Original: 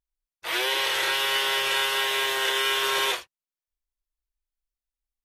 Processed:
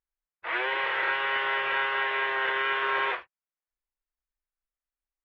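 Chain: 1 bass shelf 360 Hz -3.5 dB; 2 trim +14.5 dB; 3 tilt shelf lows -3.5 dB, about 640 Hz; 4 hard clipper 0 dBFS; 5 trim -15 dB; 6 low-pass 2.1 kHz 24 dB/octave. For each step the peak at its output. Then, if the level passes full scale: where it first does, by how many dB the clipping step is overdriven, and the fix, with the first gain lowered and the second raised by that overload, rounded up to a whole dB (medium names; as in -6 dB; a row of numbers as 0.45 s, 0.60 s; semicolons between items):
-12.0 dBFS, +2.5 dBFS, +4.5 dBFS, 0.0 dBFS, -15.0 dBFS, -16.0 dBFS; step 2, 4.5 dB; step 2 +9.5 dB, step 5 -10 dB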